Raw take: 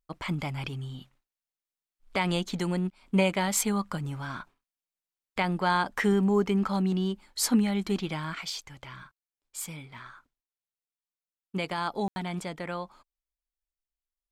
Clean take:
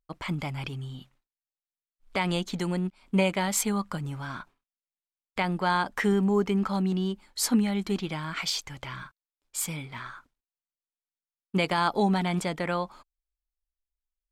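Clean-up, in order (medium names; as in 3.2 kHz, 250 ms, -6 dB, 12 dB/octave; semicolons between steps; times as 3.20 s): room tone fill 12.08–12.16 s; gain correction +6 dB, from 8.35 s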